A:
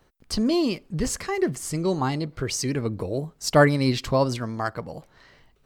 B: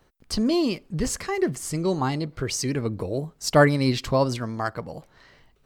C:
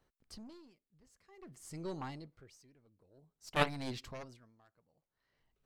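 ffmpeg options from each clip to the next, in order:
ffmpeg -i in.wav -af anull out.wav
ffmpeg -i in.wav -af "aeval=exprs='0.562*(cos(1*acos(clip(val(0)/0.562,-1,1)))-cos(1*PI/2))+0.251*(cos(3*acos(clip(val(0)/0.562,-1,1)))-cos(3*PI/2))+0.01*(cos(6*acos(clip(val(0)/0.562,-1,1)))-cos(6*PI/2))':channel_layout=same,aeval=exprs='val(0)*pow(10,-26*(0.5-0.5*cos(2*PI*0.52*n/s))/20)':channel_layout=same,volume=-5.5dB" out.wav

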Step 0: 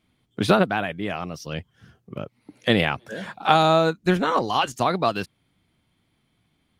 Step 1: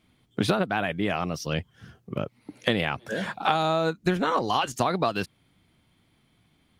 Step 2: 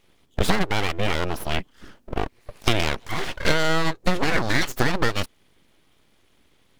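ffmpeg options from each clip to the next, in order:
ffmpeg -i in.wav -af "acompressor=threshold=-24dB:ratio=6,volume=3.5dB" out.wav
ffmpeg -i in.wav -af "aeval=exprs='abs(val(0))':channel_layout=same,volume=5.5dB" out.wav

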